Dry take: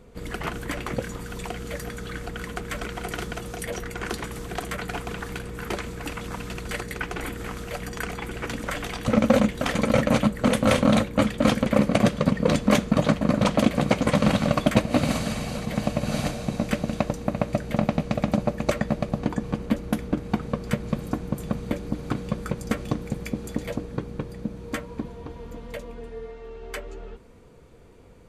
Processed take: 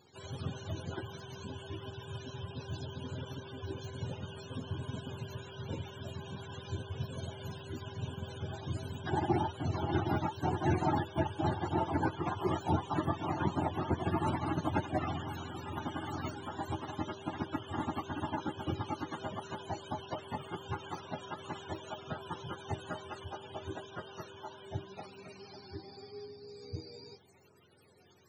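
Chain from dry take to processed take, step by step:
frequency axis turned over on the octave scale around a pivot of 430 Hz
level −8.5 dB

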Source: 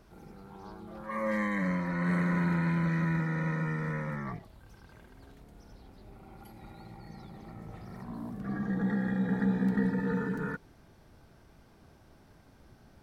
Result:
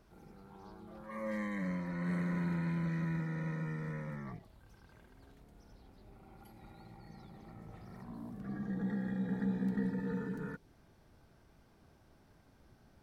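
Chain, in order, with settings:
dynamic equaliser 1,300 Hz, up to −5 dB, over −49 dBFS, Q 0.81
level −6 dB

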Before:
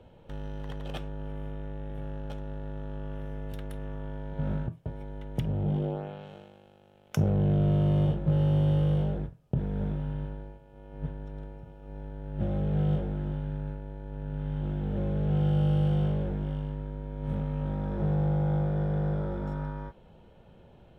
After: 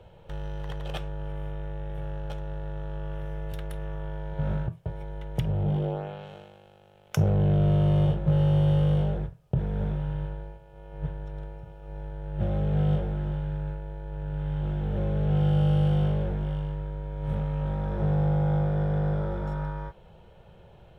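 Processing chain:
parametric band 260 Hz −14.5 dB 0.51 octaves
level +4 dB

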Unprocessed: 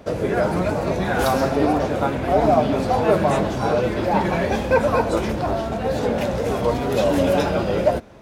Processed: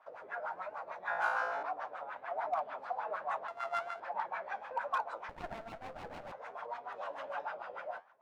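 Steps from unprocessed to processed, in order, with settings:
0:03.48–0:04.00: samples sorted by size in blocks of 64 samples
low shelf with overshoot 560 Hz −13.5 dB, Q 1.5
auto-filter low-pass sine 6.7 Hz 420–1,500 Hz
first difference
hard clipping −25 dBFS, distortion −27 dB
flanger 1.2 Hz, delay 6 ms, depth 7.2 ms, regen −77%
0:01.02–0:01.63: flutter between parallel walls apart 3 metres, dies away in 0.72 s
0:05.29–0:06.32: windowed peak hold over 17 samples
level +3.5 dB

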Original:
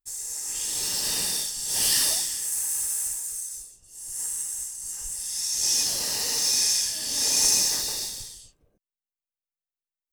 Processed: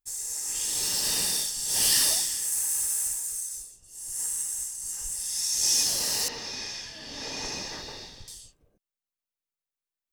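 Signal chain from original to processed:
0:06.28–0:08.28: high-frequency loss of the air 250 metres

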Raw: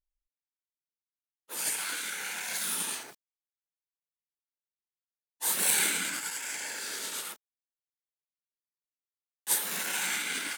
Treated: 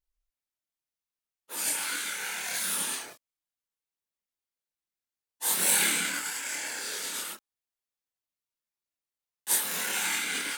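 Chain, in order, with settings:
multi-voice chorus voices 4, 0.21 Hz, delay 26 ms, depth 2.3 ms
level +5 dB

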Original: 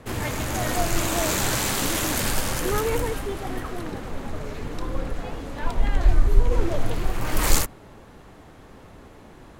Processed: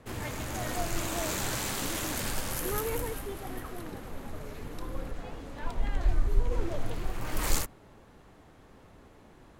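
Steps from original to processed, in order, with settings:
0:02.50–0:05.10: parametric band 12,000 Hz +10.5 dB 0.5 octaves
level −8.5 dB

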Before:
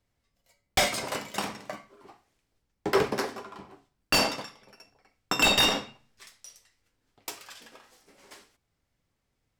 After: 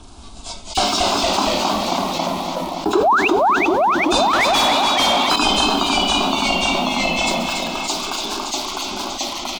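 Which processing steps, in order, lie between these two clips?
hearing-aid frequency compression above 2,200 Hz 1.5 to 1
0:02.95–0:03.28: sound drawn into the spectrogram rise 330–2,900 Hz −15 dBFS
in parallel at −11 dB: bit reduction 7 bits
on the sum: phaser with its sweep stopped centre 520 Hz, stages 6
delay with pitch and tempo change per echo 183 ms, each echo −1 semitone, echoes 3
on a send: repeating echo 285 ms, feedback 45%, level −14 dB
0:04.33–0:05.36: on the sum: mid-hump overdrive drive 25 dB, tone 3,800 Hz, clips at −13.5 dBFS
envelope flattener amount 70%

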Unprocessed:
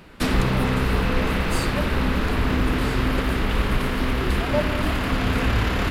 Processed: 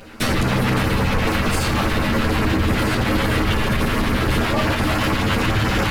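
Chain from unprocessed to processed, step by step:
lower of the sound and its delayed copy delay 9.2 ms
auto-filter notch sine 7.1 Hz 320–3,800 Hz
tuned comb filter 78 Hz, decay 0.3 s, harmonics all, mix 70%
boost into a limiter +23.5 dB
level −9 dB

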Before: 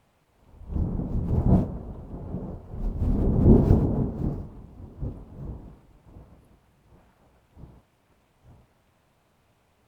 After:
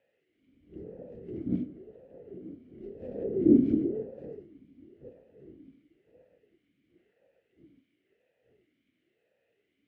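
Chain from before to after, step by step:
harmonic generator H 2 −8 dB, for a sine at −3.5 dBFS
0:02.45–0:03.96: parametric band 360 Hz +4 dB 2.1 octaves
formant filter swept between two vowels e-i 0.96 Hz
level +3.5 dB

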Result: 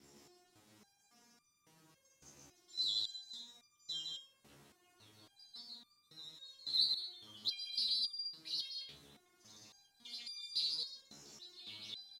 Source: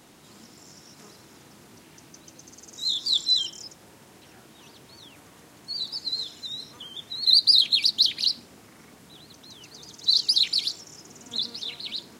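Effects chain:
slices reordered back to front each 134 ms, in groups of 5
loudspeakers that aren't time-aligned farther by 55 metres −3 dB, 77 metres −7 dB
step-sequenced resonator 3.6 Hz 71–1,200 Hz
level −6 dB

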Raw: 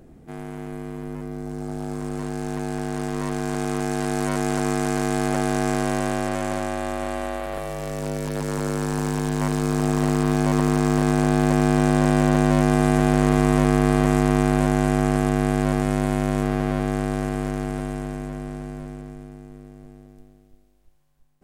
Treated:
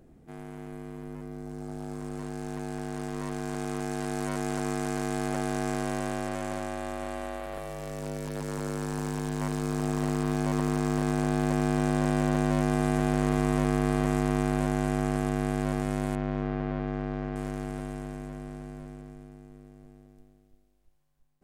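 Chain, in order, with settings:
0:16.15–0:17.36: high-frequency loss of the air 230 metres
level −7.5 dB

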